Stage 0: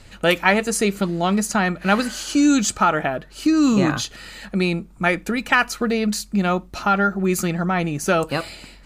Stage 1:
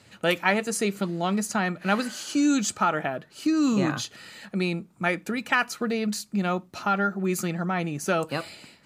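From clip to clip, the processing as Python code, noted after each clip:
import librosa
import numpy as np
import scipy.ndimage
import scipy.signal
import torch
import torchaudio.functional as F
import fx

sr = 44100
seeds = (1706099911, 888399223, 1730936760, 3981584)

y = scipy.signal.sosfilt(scipy.signal.butter(4, 99.0, 'highpass', fs=sr, output='sos'), x)
y = y * librosa.db_to_amplitude(-6.0)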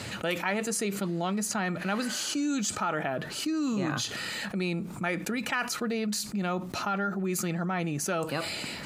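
y = fx.env_flatten(x, sr, amount_pct=70)
y = y * librosa.db_to_amplitude(-8.5)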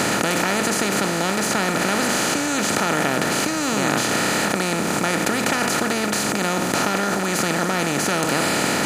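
y = fx.bin_compress(x, sr, power=0.2)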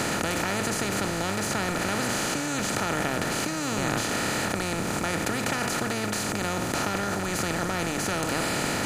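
y = fx.octave_divider(x, sr, octaves=1, level_db=-5.0)
y = y * librosa.db_to_amplitude(-7.0)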